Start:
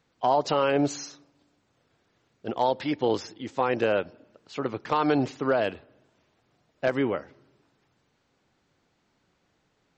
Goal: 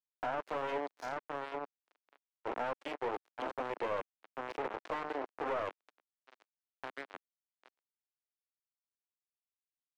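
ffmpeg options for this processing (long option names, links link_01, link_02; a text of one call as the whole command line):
ffmpeg -i in.wav -filter_complex "[0:a]asplit=2[link_01][link_02];[link_02]adelay=785,lowpass=frequency=3200:poles=1,volume=-15dB,asplit=2[link_03][link_04];[link_04]adelay=785,lowpass=frequency=3200:poles=1,volume=0.41,asplit=2[link_05][link_06];[link_06]adelay=785,lowpass=frequency=3200:poles=1,volume=0.41,asplit=2[link_07][link_08];[link_08]adelay=785,lowpass=frequency=3200:poles=1,volume=0.41[link_09];[link_01][link_03][link_05][link_07][link_09]amix=inputs=5:normalize=0,acompressor=threshold=-30dB:ratio=16,asetnsamples=nb_out_samples=441:pad=0,asendcmd='5.71 equalizer g -11.5',equalizer=frequency=490:width=1.3:gain=5,bandreject=frequency=50:width_type=h:width=6,bandreject=frequency=100:width_type=h:width=6,bandreject=frequency=150:width_type=h:width=6,bandreject=frequency=200:width_type=h:width=6,bandreject=frequency=250:width_type=h:width=6,bandreject=frequency=300:width_type=h:width=6,bandreject=frequency=350:width_type=h:width=6,bandreject=frequency=400:width_type=h:width=6,bandreject=frequency=450:width_type=h:width=6,asplit=2[link_10][link_11];[link_11]adelay=19,volume=-12dB[link_12];[link_10][link_12]amix=inputs=2:normalize=0,aeval=exprs='(tanh(63.1*val(0)+0.7)-tanh(0.7))/63.1':channel_layout=same,acrusher=bits=4:mix=0:aa=0.5,highpass=frequency=280:width=0.5412,highpass=frequency=280:width=1.3066,highshelf=frequency=4300:gain=-6.5,asplit=2[link_13][link_14];[link_14]highpass=frequency=720:poles=1,volume=13dB,asoftclip=type=tanh:threshold=-39dB[link_15];[link_13][link_15]amix=inputs=2:normalize=0,lowpass=frequency=1200:poles=1,volume=-6dB,volume=14.5dB" out.wav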